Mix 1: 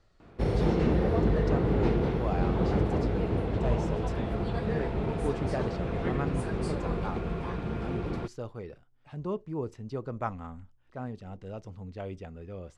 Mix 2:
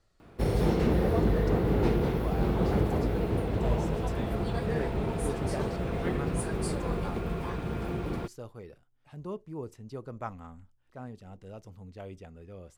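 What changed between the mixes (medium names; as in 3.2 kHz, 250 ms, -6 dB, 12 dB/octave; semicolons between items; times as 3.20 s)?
speech -5.0 dB; master: remove distance through air 82 m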